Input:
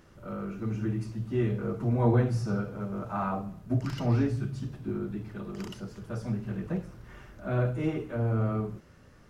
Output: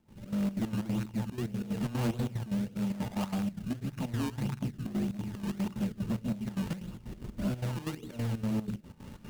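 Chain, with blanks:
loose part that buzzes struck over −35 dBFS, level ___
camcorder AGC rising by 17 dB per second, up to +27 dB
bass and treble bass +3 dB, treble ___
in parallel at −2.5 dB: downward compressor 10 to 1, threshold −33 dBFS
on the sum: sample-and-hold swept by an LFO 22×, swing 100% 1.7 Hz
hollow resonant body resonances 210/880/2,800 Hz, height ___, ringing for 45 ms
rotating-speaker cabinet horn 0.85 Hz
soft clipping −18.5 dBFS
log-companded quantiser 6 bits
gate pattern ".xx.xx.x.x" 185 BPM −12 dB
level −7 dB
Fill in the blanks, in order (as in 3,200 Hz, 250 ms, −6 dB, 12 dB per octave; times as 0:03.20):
−27 dBFS, −13 dB, 10 dB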